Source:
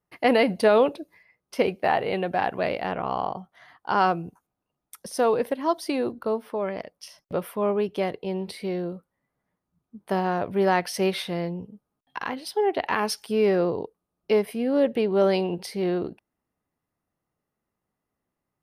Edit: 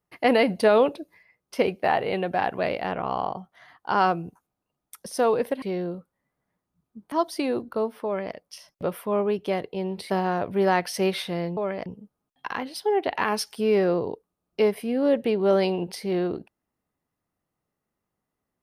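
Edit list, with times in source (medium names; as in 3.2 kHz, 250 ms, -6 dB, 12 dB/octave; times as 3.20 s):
6.55–6.84 s: copy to 11.57 s
8.60–10.10 s: move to 5.62 s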